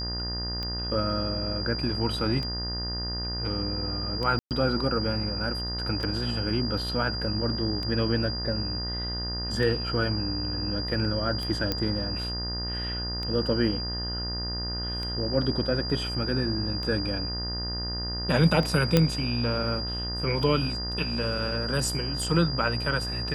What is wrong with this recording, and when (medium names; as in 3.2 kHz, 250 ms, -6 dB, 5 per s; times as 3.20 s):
buzz 60 Hz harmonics 32 -34 dBFS
tick 33 1/3 rpm -20 dBFS
whine 4.8 kHz -32 dBFS
4.39–4.51 s: dropout 118 ms
11.72 s: pop -12 dBFS
18.97 s: pop -6 dBFS